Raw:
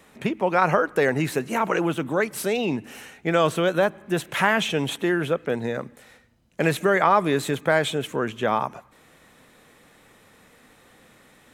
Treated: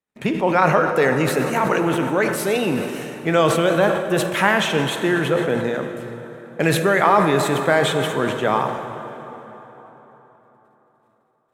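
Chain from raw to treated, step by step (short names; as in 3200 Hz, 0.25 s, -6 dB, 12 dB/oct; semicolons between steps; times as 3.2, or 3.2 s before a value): gate -49 dBFS, range -39 dB; plate-style reverb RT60 4.1 s, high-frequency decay 0.65×, DRR 6 dB; sustainer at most 54 dB/s; gain +2.5 dB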